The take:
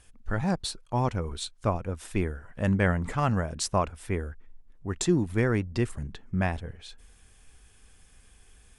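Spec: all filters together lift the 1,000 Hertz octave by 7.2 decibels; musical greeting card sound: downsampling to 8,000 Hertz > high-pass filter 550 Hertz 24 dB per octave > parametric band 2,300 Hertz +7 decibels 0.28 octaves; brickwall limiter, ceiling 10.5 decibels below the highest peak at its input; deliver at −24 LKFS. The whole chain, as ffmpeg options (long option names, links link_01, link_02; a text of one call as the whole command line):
ffmpeg -i in.wav -af "equalizer=frequency=1000:width_type=o:gain=9,alimiter=limit=-17.5dB:level=0:latency=1,aresample=8000,aresample=44100,highpass=frequency=550:width=0.5412,highpass=frequency=550:width=1.3066,equalizer=frequency=2300:width_type=o:width=0.28:gain=7,volume=10.5dB" out.wav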